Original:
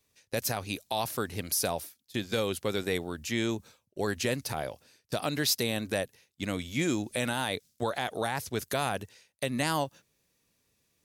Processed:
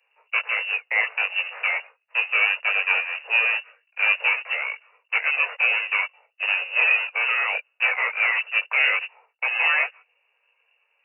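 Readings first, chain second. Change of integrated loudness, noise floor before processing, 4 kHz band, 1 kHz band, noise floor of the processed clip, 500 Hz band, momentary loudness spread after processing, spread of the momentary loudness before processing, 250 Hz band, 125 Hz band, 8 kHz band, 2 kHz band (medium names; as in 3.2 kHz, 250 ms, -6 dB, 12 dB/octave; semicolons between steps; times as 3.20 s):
+10.5 dB, -75 dBFS, +4.5 dB, +3.0 dB, -71 dBFS, -7.0 dB, 8 LU, 8 LU, under -40 dB, under -40 dB, under -40 dB, +17.5 dB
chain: square wave that keeps the level; chorus voices 4, 0.46 Hz, delay 19 ms, depth 2 ms; frequency inversion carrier 2.8 kHz; steep high-pass 450 Hz 96 dB/octave; trim +6.5 dB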